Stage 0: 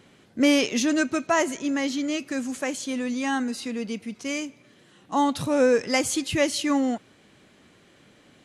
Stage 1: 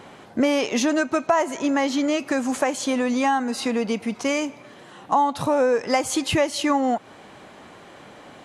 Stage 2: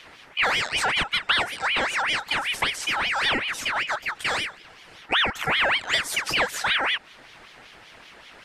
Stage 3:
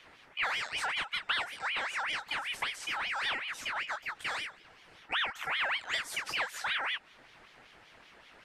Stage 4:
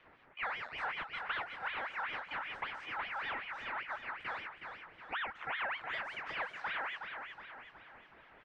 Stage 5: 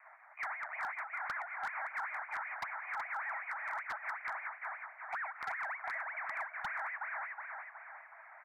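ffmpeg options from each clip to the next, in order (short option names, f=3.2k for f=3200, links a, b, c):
-af "equalizer=f=850:w=0.92:g=13,acompressor=threshold=-26dB:ratio=4,volume=6.5dB"
-af "aeval=exprs='val(0)*sin(2*PI*1900*n/s+1900*0.45/5.2*sin(2*PI*5.2*n/s))':c=same"
-filter_complex "[0:a]acrossover=split=700|2800[a][b][c];[a]acompressor=threshold=-43dB:ratio=6[d];[c]flanger=delay=15.5:depth=5:speed=0.87[e];[d][b][e]amix=inputs=3:normalize=0,volume=-8.5dB"
-filter_complex "[0:a]lowpass=1.8k,asplit=2[a][b];[b]aecho=0:1:368|736|1104|1472|1840|2208:0.473|0.227|0.109|0.0523|0.0251|0.0121[c];[a][c]amix=inputs=2:normalize=0,volume=-3dB"
-af "acompressor=threshold=-41dB:ratio=10,asuperpass=centerf=1200:order=20:qfactor=0.72,aeval=exprs='0.015*(abs(mod(val(0)/0.015+3,4)-2)-1)':c=same,volume=6dB"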